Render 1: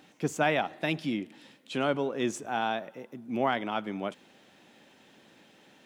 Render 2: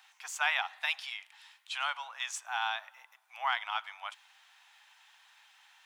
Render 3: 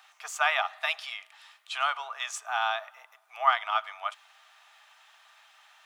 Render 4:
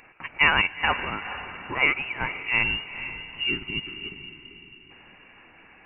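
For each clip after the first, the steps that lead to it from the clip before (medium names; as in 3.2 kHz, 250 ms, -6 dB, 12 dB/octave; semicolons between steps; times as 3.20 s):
steep high-pass 840 Hz 48 dB/octave; dynamic bell 3.8 kHz, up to +3 dB, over -46 dBFS, Q 0.8
small resonant body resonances 440/640/1200 Hz, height 15 dB, ringing for 50 ms; trim +2 dB
frequency inversion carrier 3.5 kHz; time-frequency box 2.63–4.90 s, 430–2700 Hz -21 dB; echo that smears into a reverb 456 ms, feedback 44%, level -11 dB; trim +6 dB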